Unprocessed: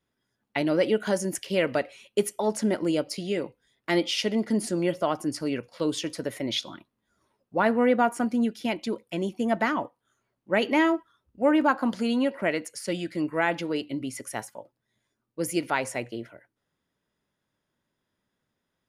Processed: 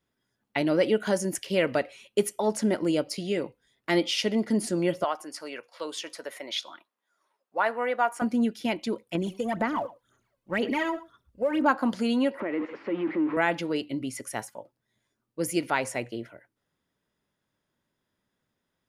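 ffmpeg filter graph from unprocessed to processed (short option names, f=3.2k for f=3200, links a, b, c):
-filter_complex "[0:a]asettb=1/sr,asplit=3[a][b][c];[a]atrim=end=5.044[d];[b]atrim=start=5.04:end=8.22,asetpts=PTS-STARTPTS,afade=t=in:d=0.004:c=qsin,afade=t=out:st=3.176:d=0.004:c=qsin,highpass=810,tiltshelf=f=1.5k:g=3.5[e];[c]atrim=start=8.216[f];[d][e]acrossfade=d=0.004:c1=hsin:c2=qsin[g];[g][f]acrossfade=d=0.004:c1=qsin:c2=hsin,asettb=1/sr,asplit=3[h][i][j];[h]atrim=end=9.154[k];[i]atrim=start=9.15:end=11.66,asetpts=PTS-STARTPTS,afade=t=in:d=0.004:c=qsin,afade=t=out:st=2.506:d=0.004:c=qsin,aphaser=in_gain=1:out_gain=1:delay=2:decay=0.69:speed=2:type=sinusoidal,aecho=1:1:111:0.0631,atrim=end_sample=110691,acompressor=threshold=-25dB:ratio=3:attack=3.2:release=140:knee=1:detection=peak[l];[j]atrim=start=11.656[m];[k][l]acrossfade=d=0.004:c1=hsin:c2=qsin[n];[n][m]acrossfade=d=0.004:c1=qsin:c2=hsin,asettb=1/sr,asplit=3[o][p][q];[o]atrim=end=12.404[r];[p]atrim=start=12.4:end=13.37,asetpts=PTS-STARTPTS,afade=t=in:d=0.004:c=qsin,afade=t=out:st=0.966:d=0.004:c=qsin,aeval=exprs='val(0)+0.5*0.0355*sgn(val(0))':c=same,acompressor=threshold=-26dB:ratio=4:attack=3.2:release=140:knee=1:detection=peak,highpass=f=180:w=0.5412,highpass=f=180:w=1.3066,equalizer=f=190:t=q:w=4:g=-7,equalizer=f=320:t=q:w=4:g=6,equalizer=f=680:t=q:w=4:g=-6,equalizer=f=1.6k:t=q:w=4:g=-5,lowpass=f=2.1k:w=0.5412,lowpass=f=2.1k:w=1.3066[s];[q]atrim=start=13.366[t];[r][s]acrossfade=d=0.004:c1=hsin:c2=qsin[u];[u][t]acrossfade=d=0.004:c1=qsin:c2=hsin"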